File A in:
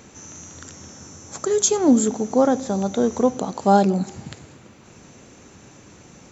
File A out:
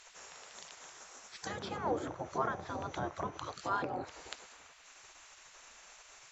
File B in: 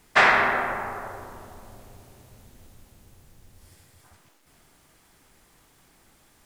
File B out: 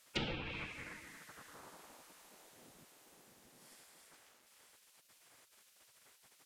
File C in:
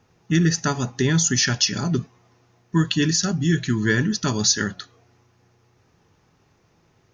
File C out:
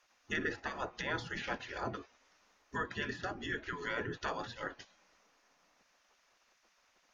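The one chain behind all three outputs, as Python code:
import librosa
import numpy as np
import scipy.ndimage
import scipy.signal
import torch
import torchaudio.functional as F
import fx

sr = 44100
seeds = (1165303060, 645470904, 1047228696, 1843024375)

y = fx.spec_gate(x, sr, threshold_db=-15, keep='weak')
y = fx.env_lowpass_down(y, sr, base_hz=1800.0, full_db=-31.0)
y = y * librosa.db_to_amplitude(-2.5)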